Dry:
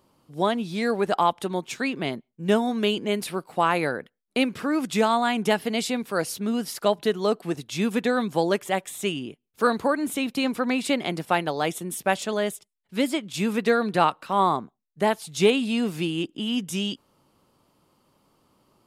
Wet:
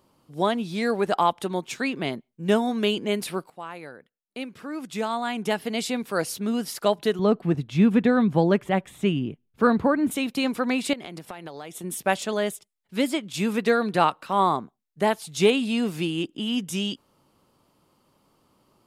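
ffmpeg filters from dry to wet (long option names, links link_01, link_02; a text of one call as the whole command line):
ffmpeg -i in.wav -filter_complex "[0:a]asettb=1/sr,asplit=3[link_01][link_02][link_03];[link_01]atrim=end=7.194[link_04];[link_02]atrim=start=7.19:end=10.11,asetpts=PTS-STARTPTS,afade=type=in:duration=0.004:curve=qsin,afade=type=out:start_time=2.916:duration=0.004:curve=qsin,bass=frequency=250:gain=12,treble=frequency=4000:gain=-14[link_05];[link_03]atrim=start=10.106[link_06];[link_04][link_05]acrossfade=duration=0.004:curve1=hsin:curve2=qsin[link_07];[link_07][link_06]acrossfade=duration=0.004:curve1=qsin:curve2=hsin,asettb=1/sr,asplit=3[link_08][link_09][link_10];[link_08]atrim=end=10.934[link_11];[link_09]atrim=start=10.93:end=11.84,asetpts=PTS-STARTPTS,afade=type=in:duration=0.004:curve=qsin,afade=type=out:start_time=0.906:duration=0.004:curve=qsin,acompressor=threshold=-33dB:ratio=12:attack=3.2:release=140:knee=1:detection=peak[link_12];[link_10]atrim=start=11.836[link_13];[link_11][link_12]acrossfade=duration=0.004:curve1=hsin:curve2=qsin[link_14];[link_14][link_13]acrossfade=duration=0.004:curve1=qsin:curve2=hsin,asplit=2[link_15][link_16];[link_15]atrim=end=3.5,asetpts=PTS-STARTPTS,afade=type=out:start_time=3.496:duration=0.004:curve=hsin:silence=0.158489[link_17];[link_16]atrim=start=3.5,asetpts=PTS-STARTPTS,afade=type=in:duration=2.55:curve=qua:silence=0.158489[link_18];[link_17][link_18]concat=n=2:v=0:a=1" out.wav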